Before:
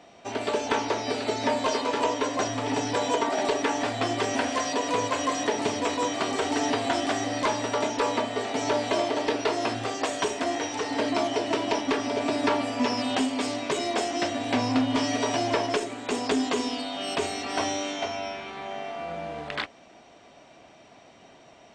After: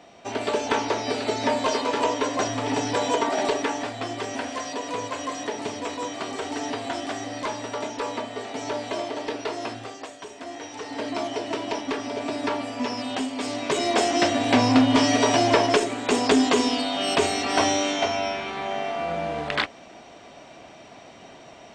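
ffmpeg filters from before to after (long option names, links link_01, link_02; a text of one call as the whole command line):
ffmpeg -i in.wav -af "volume=22.5dB,afade=type=out:start_time=3.45:duration=0.48:silence=0.501187,afade=type=out:start_time=9.65:duration=0.54:silence=0.316228,afade=type=in:start_time=10.19:duration=1.06:silence=0.266073,afade=type=in:start_time=13.35:duration=0.74:silence=0.354813" out.wav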